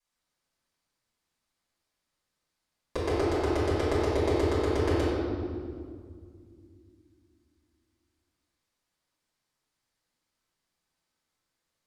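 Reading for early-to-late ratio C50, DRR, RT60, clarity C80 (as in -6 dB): -2.5 dB, -13.0 dB, 2.1 s, 0.0 dB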